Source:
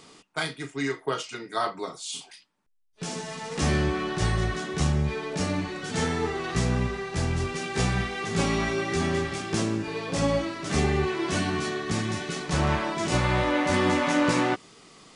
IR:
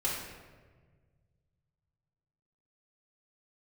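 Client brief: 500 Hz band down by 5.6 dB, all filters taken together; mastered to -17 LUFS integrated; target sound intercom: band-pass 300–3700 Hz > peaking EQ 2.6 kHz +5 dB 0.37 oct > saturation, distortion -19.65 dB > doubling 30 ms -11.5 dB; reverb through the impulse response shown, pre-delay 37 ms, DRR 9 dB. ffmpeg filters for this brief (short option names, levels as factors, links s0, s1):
-filter_complex "[0:a]equalizer=f=500:t=o:g=-6.5,asplit=2[s0][s1];[1:a]atrim=start_sample=2205,adelay=37[s2];[s1][s2]afir=irnorm=-1:irlink=0,volume=0.168[s3];[s0][s3]amix=inputs=2:normalize=0,highpass=300,lowpass=3700,equalizer=f=2600:t=o:w=0.37:g=5,asoftclip=threshold=0.1,asplit=2[s4][s5];[s5]adelay=30,volume=0.266[s6];[s4][s6]amix=inputs=2:normalize=0,volume=5.31"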